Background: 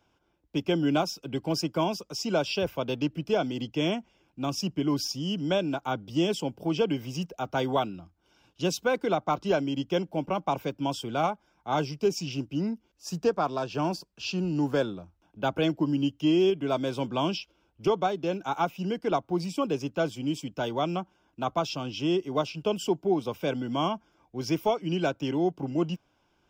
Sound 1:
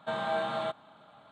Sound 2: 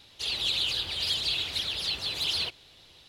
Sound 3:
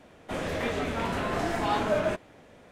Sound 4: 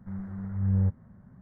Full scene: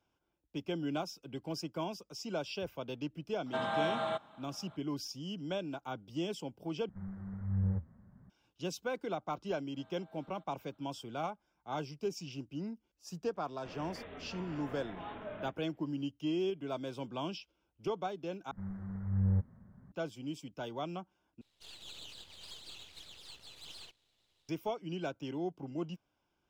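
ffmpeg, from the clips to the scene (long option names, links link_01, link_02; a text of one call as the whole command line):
ffmpeg -i bed.wav -i cue0.wav -i cue1.wav -i cue2.wav -i cue3.wav -filter_complex "[1:a]asplit=2[link_01][link_02];[4:a]asplit=2[link_03][link_04];[0:a]volume=-11dB[link_05];[link_01]bandreject=frequency=4500:width=7.4[link_06];[link_03]flanger=delay=1:depth=5.3:regen=-76:speed=1.6:shape=sinusoidal[link_07];[link_02]acompressor=threshold=-43dB:ratio=6:attack=3.2:release=140:knee=1:detection=peak[link_08];[3:a]aresample=8000,aresample=44100[link_09];[2:a]aeval=exprs='if(lt(val(0),0),0.251*val(0),val(0))':channel_layout=same[link_10];[link_05]asplit=4[link_11][link_12][link_13][link_14];[link_11]atrim=end=6.894[link_15];[link_07]atrim=end=1.41,asetpts=PTS-STARTPTS,volume=-2.5dB[link_16];[link_12]atrim=start=8.296:end=18.514[link_17];[link_04]atrim=end=1.41,asetpts=PTS-STARTPTS,volume=-5dB[link_18];[link_13]atrim=start=19.916:end=21.414[link_19];[link_10]atrim=end=3.08,asetpts=PTS-STARTPTS,volume=-18dB[link_20];[link_14]atrim=start=24.486[link_21];[link_06]atrim=end=1.31,asetpts=PTS-STARTPTS,volume=-2dB,afade=type=in:duration=0.004:curve=hsin,afade=type=out:start_time=1.306:duration=0.004:curve=hsin,adelay=3460[link_22];[link_08]atrim=end=1.31,asetpts=PTS-STARTPTS,volume=-17.5dB,afade=type=in:duration=0.004:curve=hsin,afade=type=out:start_time=1.306:duration=0.004:curve=hsin,adelay=9720[link_23];[link_09]atrim=end=2.71,asetpts=PTS-STARTPTS,volume=-18dB,afade=type=in:duration=0.004:curve=hsin,afade=type=out:start_time=2.706:duration=0.004:curve=hsin,adelay=13350[link_24];[link_15][link_16]acrossfade=duration=0.004:curve1=hsin:curve2=hsin[link_25];[link_25][link_17]acrossfade=duration=0.004:curve1=hsin:curve2=hsin[link_26];[link_26][link_18]acrossfade=duration=0.004:curve1=hsin:curve2=hsin[link_27];[link_27][link_19]acrossfade=duration=0.004:curve1=hsin:curve2=hsin[link_28];[link_28][link_20]acrossfade=duration=0.004:curve1=hsin:curve2=hsin[link_29];[link_29][link_21]acrossfade=duration=0.004:curve1=hsin:curve2=hsin[link_30];[link_30][link_22][link_23][link_24]amix=inputs=4:normalize=0" out.wav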